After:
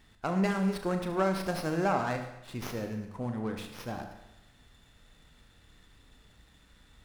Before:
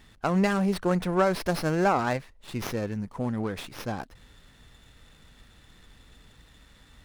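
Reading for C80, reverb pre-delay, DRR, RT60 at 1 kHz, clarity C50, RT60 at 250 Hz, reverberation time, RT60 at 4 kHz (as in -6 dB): 10.0 dB, 32 ms, 5.0 dB, 0.90 s, 7.5 dB, 0.95 s, 0.90 s, 0.90 s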